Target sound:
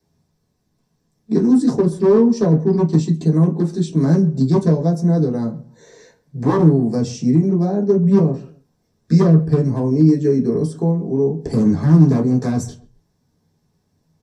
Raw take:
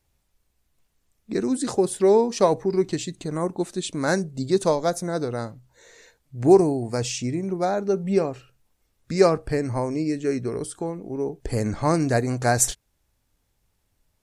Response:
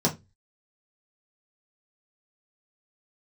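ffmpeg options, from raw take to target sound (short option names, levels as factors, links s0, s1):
-filter_complex "[0:a]acrossover=split=380[s0][s1];[s1]acompressor=threshold=0.0178:ratio=4[s2];[s0][s2]amix=inputs=2:normalize=0,aeval=exprs='0.119*(abs(mod(val(0)/0.119+3,4)-2)-1)':c=same,asplit=2[s3][s4];[s4]adelay=132,lowpass=f=2000:p=1,volume=0.106,asplit=2[s5][s6];[s6]adelay=132,lowpass=f=2000:p=1,volume=0.3[s7];[s3][s5][s7]amix=inputs=3:normalize=0[s8];[1:a]atrim=start_sample=2205[s9];[s8][s9]afir=irnorm=-1:irlink=0,volume=0.398"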